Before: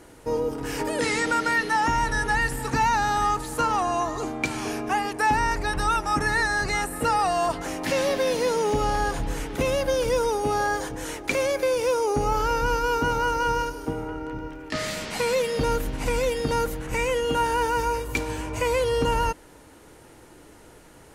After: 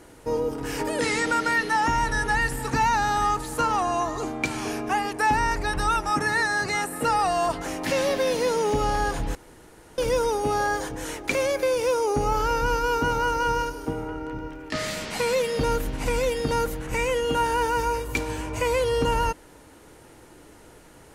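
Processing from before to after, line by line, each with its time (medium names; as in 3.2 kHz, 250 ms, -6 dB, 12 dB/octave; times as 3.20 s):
6.10–7.07 s: high-pass 120 Hz
9.35–9.98 s: room tone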